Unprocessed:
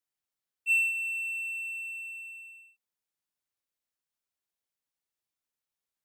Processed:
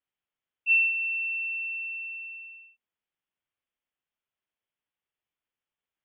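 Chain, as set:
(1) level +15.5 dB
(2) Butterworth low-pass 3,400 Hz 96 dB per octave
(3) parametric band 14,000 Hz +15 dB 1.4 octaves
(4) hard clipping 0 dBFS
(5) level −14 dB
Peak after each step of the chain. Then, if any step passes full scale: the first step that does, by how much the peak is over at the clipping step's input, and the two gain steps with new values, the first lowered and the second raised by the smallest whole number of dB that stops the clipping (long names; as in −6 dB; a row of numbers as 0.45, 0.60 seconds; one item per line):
−2.0, −4.0, −2.0, −2.0, −16.0 dBFS
no step passes full scale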